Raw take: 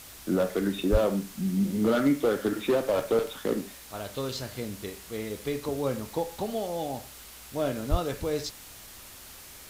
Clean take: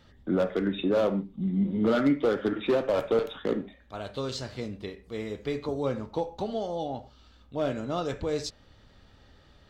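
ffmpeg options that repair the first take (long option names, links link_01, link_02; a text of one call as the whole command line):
ffmpeg -i in.wav -filter_complex "[0:a]asplit=3[link_01][link_02][link_03];[link_01]afade=type=out:start_time=0.91:duration=0.02[link_04];[link_02]highpass=frequency=140:width=0.5412,highpass=frequency=140:width=1.3066,afade=type=in:start_time=0.91:duration=0.02,afade=type=out:start_time=1.03:duration=0.02[link_05];[link_03]afade=type=in:start_time=1.03:duration=0.02[link_06];[link_04][link_05][link_06]amix=inputs=3:normalize=0,asplit=3[link_07][link_08][link_09];[link_07]afade=type=out:start_time=7.9:duration=0.02[link_10];[link_08]highpass=frequency=140:width=0.5412,highpass=frequency=140:width=1.3066,afade=type=in:start_time=7.9:duration=0.02,afade=type=out:start_time=8.02:duration=0.02[link_11];[link_09]afade=type=in:start_time=8.02:duration=0.02[link_12];[link_10][link_11][link_12]amix=inputs=3:normalize=0,afwtdn=0.005" out.wav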